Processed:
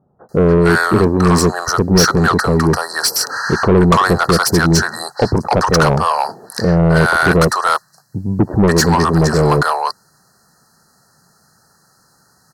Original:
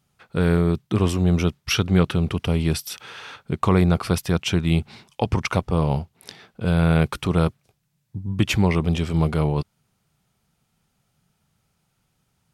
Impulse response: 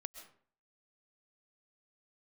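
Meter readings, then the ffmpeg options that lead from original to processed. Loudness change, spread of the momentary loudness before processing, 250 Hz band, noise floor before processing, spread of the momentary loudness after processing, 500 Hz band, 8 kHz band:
+8.0 dB, 12 LU, +7.5 dB, −72 dBFS, 8 LU, +11.5 dB, +15.0 dB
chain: -filter_complex "[0:a]acrossover=split=730[link_01][link_02];[link_02]adelay=290[link_03];[link_01][link_03]amix=inputs=2:normalize=0,afftfilt=real='re*(1-between(b*sr/4096,1900,4000))':imag='im*(1-between(b*sr/4096,1900,4000))':win_size=4096:overlap=0.75,asplit=2[link_04][link_05];[link_05]highpass=frequency=720:poles=1,volume=24dB,asoftclip=type=tanh:threshold=-6dB[link_06];[link_04][link_06]amix=inputs=2:normalize=0,lowpass=frequency=6000:poles=1,volume=-6dB,volume=4.5dB"

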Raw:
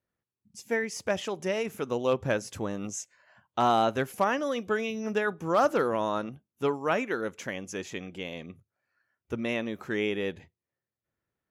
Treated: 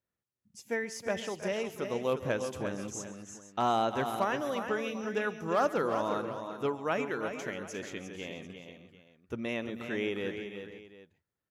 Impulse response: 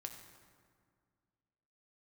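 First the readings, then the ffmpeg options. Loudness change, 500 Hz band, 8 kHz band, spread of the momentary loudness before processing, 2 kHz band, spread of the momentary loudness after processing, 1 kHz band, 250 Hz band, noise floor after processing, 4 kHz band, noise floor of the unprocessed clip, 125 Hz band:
−4.0 dB, −3.5 dB, −3.5 dB, 13 LU, −3.5 dB, 14 LU, −3.5 dB, −3.5 dB, below −85 dBFS, −3.5 dB, below −85 dBFS, −3.5 dB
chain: -af "aecho=1:1:136|317|352|481|742:0.126|0.15|0.398|0.168|0.126,volume=-4.5dB"

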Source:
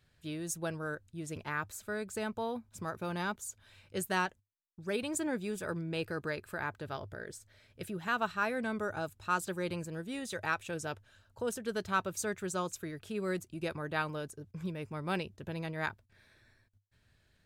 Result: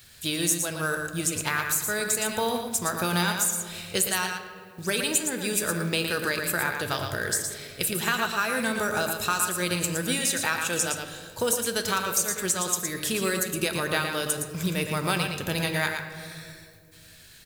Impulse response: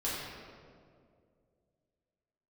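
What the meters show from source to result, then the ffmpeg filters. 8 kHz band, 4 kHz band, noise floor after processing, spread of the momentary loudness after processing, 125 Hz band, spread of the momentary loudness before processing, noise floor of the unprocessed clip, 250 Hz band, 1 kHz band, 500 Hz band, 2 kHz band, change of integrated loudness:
+18.5 dB, +16.5 dB, −51 dBFS, 6 LU, +8.5 dB, 9 LU, −71 dBFS, +7.0 dB, +7.0 dB, +7.0 dB, +10.0 dB, +11.0 dB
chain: -filter_complex "[0:a]crystalizer=i=7.5:c=0,acompressor=threshold=-34dB:ratio=6,aecho=1:1:115:0.501,asplit=2[link_01][link_02];[1:a]atrim=start_sample=2205[link_03];[link_02][link_03]afir=irnorm=-1:irlink=0,volume=-11.5dB[link_04];[link_01][link_04]amix=inputs=2:normalize=0,acrusher=bits=5:mode=log:mix=0:aa=0.000001,volume=8.5dB"

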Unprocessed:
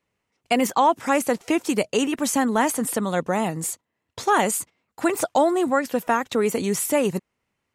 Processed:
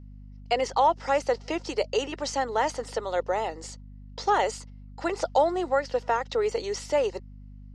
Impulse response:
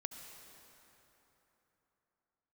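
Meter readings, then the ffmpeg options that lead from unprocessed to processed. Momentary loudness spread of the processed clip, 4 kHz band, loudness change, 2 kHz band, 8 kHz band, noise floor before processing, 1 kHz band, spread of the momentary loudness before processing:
11 LU, −3.0 dB, −4.5 dB, −6.0 dB, −12.5 dB, −79 dBFS, −3.0 dB, 8 LU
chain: -af "highpass=frequency=450:width=0.5412,highpass=frequency=450:width=1.3066,equalizer=frequency=670:width_type=q:width=4:gain=-5,equalizer=frequency=1100:width_type=q:width=4:gain=-9,equalizer=frequency=1600:width_type=q:width=4:gain=-8,equalizer=frequency=2400:width_type=q:width=4:gain=-10,equalizer=frequency=3500:width_type=q:width=4:gain=-7,equalizer=frequency=5000:width_type=q:width=4:gain=4,lowpass=frequency=5100:width=0.5412,lowpass=frequency=5100:width=1.3066,aeval=exprs='val(0)+0.00562*(sin(2*PI*50*n/s)+sin(2*PI*2*50*n/s)/2+sin(2*PI*3*50*n/s)/3+sin(2*PI*4*50*n/s)/4+sin(2*PI*5*50*n/s)/5)':channel_layout=same,volume=1.5dB"

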